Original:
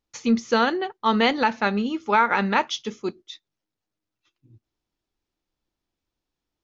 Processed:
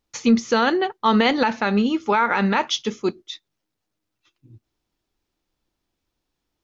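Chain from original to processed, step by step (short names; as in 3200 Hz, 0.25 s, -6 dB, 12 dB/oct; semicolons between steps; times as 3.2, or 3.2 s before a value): maximiser +12.5 dB; gain -7 dB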